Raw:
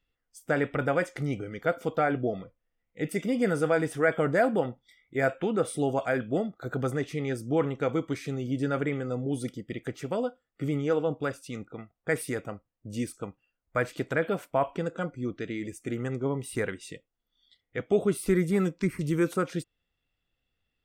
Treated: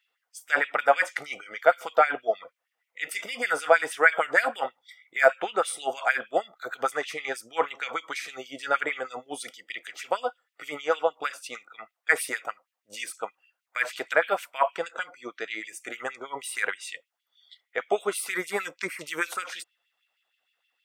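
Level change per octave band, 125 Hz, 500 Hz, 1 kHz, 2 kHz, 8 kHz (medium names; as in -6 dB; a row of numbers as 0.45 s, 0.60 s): under -25 dB, 0.0 dB, +7.0 dB, +8.5 dB, +6.0 dB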